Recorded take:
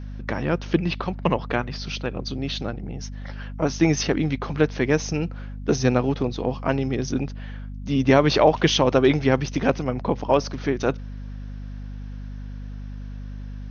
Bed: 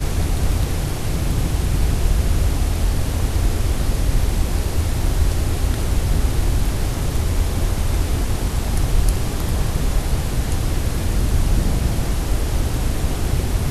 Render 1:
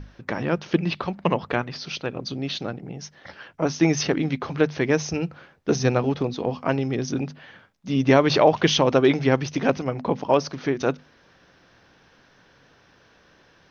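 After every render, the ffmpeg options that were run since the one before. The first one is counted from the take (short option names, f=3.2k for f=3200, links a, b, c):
-af "bandreject=f=50:t=h:w=6,bandreject=f=100:t=h:w=6,bandreject=f=150:t=h:w=6,bandreject=f=200:t=h:w=6,bandreject=f=250:t=h:w=6"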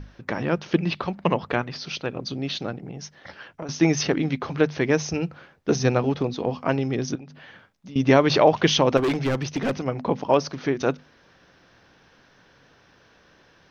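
-filter_complex "[0:a]asettb=1/sr,asplit=3[a][b][c];[a]atrim=end=2.804[d];[b]atrim=start=2.8:end=3.69,asetpts=PTS-STARTPTS,afade=t=in:d=0.004:c=qsin,afade=t=out:st=0.886:d=0.004:c=qsin,acompressor=threshold=-30dB:ratio=6:attack=3.2:release=140:knee=1:detection=peak[e];[c]atrim=start=3.686[f];[d][e]acrossfade=d=0.004:c1=hsin:c2=qsin[g];[g][f]acrossfade=d=0.004:c1=qsin:c2=hsin,asettb=1/sr,asplit=3[h][i][j];[h]atrim=end=7.154[k];[i]atrim=start=7.15:end=7.96,asetpts=PTS-STARTPTS,afade=t=in:d=0.004:c=qsin,afade=t=out:st=0.806:d=0.004:c=qsin,acompressor=threshold=-40dB:ratio=4:attack=3.2:release=140:knee=1:detection=peak[l];[j]atrim=start=7.956[m];[k][l]acrossfade=d=0.004:c1=hsin:c2=qsin[n];[n][m]acrossfade=d=0.004:c1=qsin:c2=hsin,asettb=1/sr,asplit=3[o][p][q];[o]atrim=end=8.974[r];[p]atrim=start=8.97:end=9.86,asetpts=PTS-STARTPTS,afade=t=in:d=0.004:c=qsin,afade=t=out:st=0.886:d=0.004:c=qsin,volume=19.5dB,asoftclip=hard,volume=-19.5dB[s];[q]atrim=start=9.856[t];[r][s]acrossfade=d=0.004:c1=hsin:c2=qsin[u];[u][t]acrossfade=d=0.004:c1=qsin:c2=hsin"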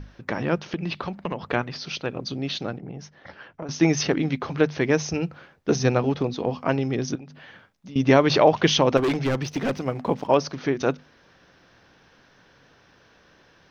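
-filter_complex "[0:a]asettb=1/sr,asplit=3[a][b][c];[a]atrim=end=0.564[d];[b]atrim=start=0.56:end=1.45,asetpts=PTS-STARTPTS,afade=t=in:d=0.004:c=qsin,afade=t=out:st=0.886:d=0.004:c=qsin,acompressor=threshold=-24dB:ratio=5:attack=3.2:release=140:knee=1:detection=peak[e];[c]atrim=start=1.446[f];[d][e]acrossfade=d=0.004:c1=hsin:c2=qsin[g];[g][f]acrossfade=d=0.004:c1=qsin:c2=hsin,asettb=1/sr,asplit=3[h][i][j];[h]atrim=end=2.784[k];[i]atrim=start=2.78:end=3.71,asetpts=PTS-STARTPTS,afade=t=in:d=0.004:c=qsin,afade=t=out:st=0.926:d=0.004:c=qsin,highshelf=f=3.4k:g=-10[l];[j]atrim=start=3.706[m];[k][l]acrossfade=d=0.004:c1=hsin:c2=qsin[n];[n][m]acrossfade=d=0.004:c1=qsin:c2=hsin,asettb=1/sr,asplit=3[o][p][q];[o]atrim=end=9.434[r];[p]atrim=start=9.43:end=10.27,asetpts=PTS-STARTPTS,afade=t=in:d=0.004:c=qsin,afade=t=out:st=0.836:d=0.004:c=qsin,aeval=exprs='sgn(val(0))*max(abs(val(0))-0.00299,0)':c=same[s];[q]atrim=start=10.266[t];[r][s]acrossfade=d=0.004:c1=hsin:c2=qsin[u];[u][t]acrossfade=d=0.004:c1=qsin:c2=hsin"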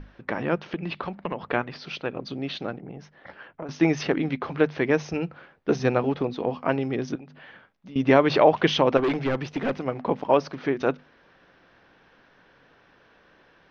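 -af "lowpass=3.1k,equalizer=f=93:t=o:w=1.9:g=-6.5"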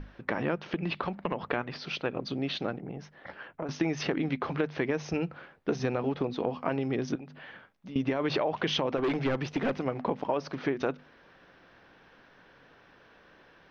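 -af "alimiter=limit=-12dB:level=0:latency=1:release=18,acompressor=threshold=-25dB:ratio=6"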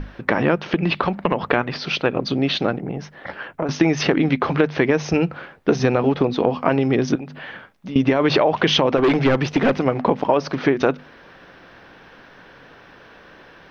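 -af "volume=12dB"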